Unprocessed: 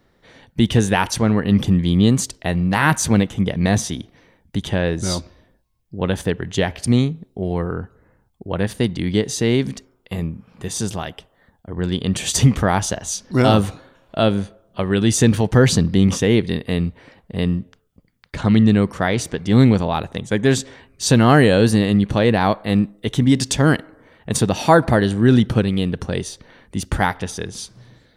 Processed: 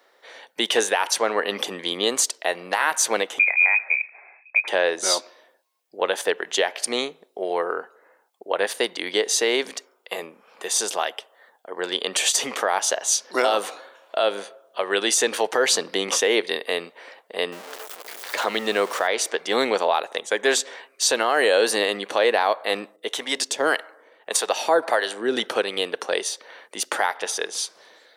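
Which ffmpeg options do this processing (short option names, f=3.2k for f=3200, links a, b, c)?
-filter_complex "[0:a]asettb=1/sr,asplit=3[a][b][c];[a]atrim=end=3.394[d];[b]atrim=start=3.39:end=4.68,asetpts=PTS-STARTPTS,afade=t=in:d=0.004:c=qsin,afade=t=out:st=1.286:d=0.004:c=qsin,lowpass=f=2.2k:t=q:w=0.5098,lowpass=f=2.2k:t=q:w=0.6013,lowpass=f=2.2k:t=q:w=0.9,lowpass=f=2.2k:t=q:w=2.563,afreqshift=-2600[e];[c]atrim=start=4.676[f];[d][e]acrossfade=d=0.004:c1=hsin:c2=qsin[g];[g][f]acrossfade=d=0.004:c1=qsin:c2=hsin,asettb=1/sr,asplit=3[h][i][j];[h]atrim=end=17.524[k];[i]atrim=start=17.52:end=19.07,asetpts=PTS-STARTPTS,afade=t=in:d=0.004:c=qsin,afade=t=out:st=1.546:d=0.004:c=qsin,aeval=exprs='val(0)+0.5*0.0251*sgn(val(0))':c=same[l];[j]atrim=start=19.066[m];[k][l]acrossfade=d=0.004:c1=hsin:c2=qsin[n];[n][m]acrossfade=d=0.004:c1=qsin:c2=hsin,asettb=1/sr,asplit=3[o][p][q];[o]atrim=end=22.964[r];[p]atrim=start=22.96:end=25.37,asetpts=PTS-STARTPTS,afade=t=in:d=0.004:c=qsin,afade=t=out:st=2.406:d=0.004:c=qsin,acrossover=split=500[s][t];[s]aeval=exprs='val(0)*(1-0.7/2+0.7/2*cos(2*PI*1.7*n/s))':c=same[u];[t]aeval=exprs='val(0)*(1-0.7/2-0.7/2*cos(2*PI*1.7*n/s))':c=same[v];[u][v]amix=inputs=2:normalize=0[w];[q]atrim=start=25.366[x];[r][w]acrossfade=d=0.004:c1=hsin:c2=qsin[y];[y][x]acrossfade=d=0.004:c1=qsin:c2=hsin,highpass=f=470:w=0.5412,highpass=f=470:w=1.3066,alimiter=limit=-13.5dB:level=0:latency=1:release=186,volume=5dB"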